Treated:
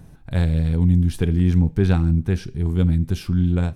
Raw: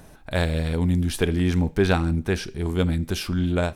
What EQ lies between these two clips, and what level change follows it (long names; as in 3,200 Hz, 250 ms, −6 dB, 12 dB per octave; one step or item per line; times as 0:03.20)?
parametric band 130 Hz +8 dB 1.4 octaves
low-shelf EQ 250 Hz +9.5 dB
notch filter 610 Hz, Q 12
−7.0 dB